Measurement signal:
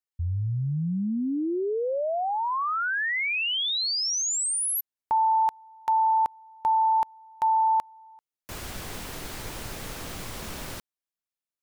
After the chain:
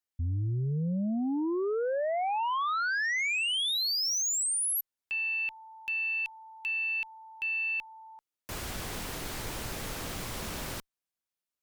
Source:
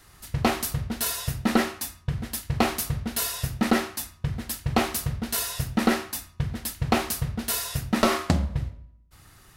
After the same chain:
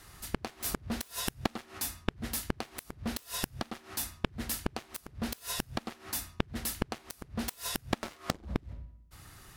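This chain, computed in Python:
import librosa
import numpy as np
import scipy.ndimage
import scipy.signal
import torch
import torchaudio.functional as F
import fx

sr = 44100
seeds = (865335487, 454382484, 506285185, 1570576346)

y = fx.cheby_harmonics(x, sr, harmonics=(2, 5, 7, 8), levels_db=(-21, -42, -13, -45), full_scale_db=-6.5)
y = fx.gate_flip(y, sr, shuts_db=-20.0, range_db=-26)
y = F.gain(torch.from_numpy(y), 6.0).numpy()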